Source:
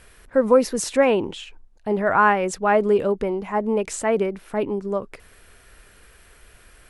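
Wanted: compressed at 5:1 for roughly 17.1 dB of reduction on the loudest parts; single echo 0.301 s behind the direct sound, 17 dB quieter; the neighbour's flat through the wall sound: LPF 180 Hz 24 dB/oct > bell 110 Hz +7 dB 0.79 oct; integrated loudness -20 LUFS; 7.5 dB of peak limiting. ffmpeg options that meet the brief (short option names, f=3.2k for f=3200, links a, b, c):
-af "acompressor=threshold=-31dB:ratio=5,alimiter=level_in=2.5dB:limit=-24dB:level=0:latency=1,volume=-2.5dB,lowpass=f=180:w=0.5412,lowpass=f=180:w=1.3066,equalizer=f=110:t=o:w=0.79:g=7,aecho=1:1:301:0.141,volume=29.5dB"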